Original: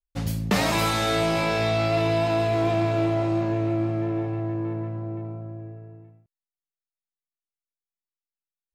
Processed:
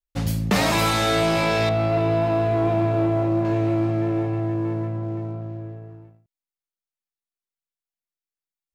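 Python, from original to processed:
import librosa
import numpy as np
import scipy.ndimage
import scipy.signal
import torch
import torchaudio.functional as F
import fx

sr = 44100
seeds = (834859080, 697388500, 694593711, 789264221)

y = fx.lowpass(x, sr, hz=1100.0, slope=6, at=(1.69, 3.45))
y = fx.leveller(y, sr, passes=1)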